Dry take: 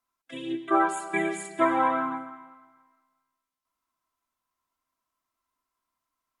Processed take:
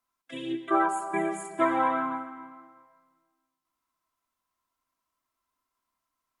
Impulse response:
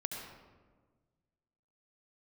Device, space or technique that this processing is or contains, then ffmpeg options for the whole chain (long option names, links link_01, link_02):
ducked reverb: -filter_complex "[0:a]asplit=3[link_01][link_02][link_03];[1:a]atrim=start_sample=2205[link_04];[link_02][link_04]afir=irnorm=-1:irlink=0[link_05];[link_03]apad=whole_len=282250[link_06];[link_05][link_06]sidechaincompress=threshold=-28dB:ratio=8:attack=16:release=768,volume=-7dB[link_07];[link_01][link_07]amix=inputs=2:normalize=0,asettb=1/sr,asplit=3[link_08][link_09][link_10];[link_08]atrim=end=0.864[link_11];[link_09]atrim=start=0.86:end=1.6,asetpts=PTS-STARTPTS,afade=type=in:duration=0.004:curve=qsin,afade=type=out:start_time=0.736:duration=0.004:curve=qsin,equalizer=frequency=1000:width_type=o:width=1:gain=7,equalizer=frequency=2000:width_type=o:width=1:gain=-5,equalizer=frequency=4000:width_type=o:width=1:gain=-11[link_12];[link_10]atrim=start=1.596[link_13];[link_11][link_12]acrossfade=duration=0.004:curve1=hsin:curve2=qsin[link_14];[link_14][link_13]acrossfade=duration=0.004:curve1=qsin:curve2=hsin,volume=-2.5dB"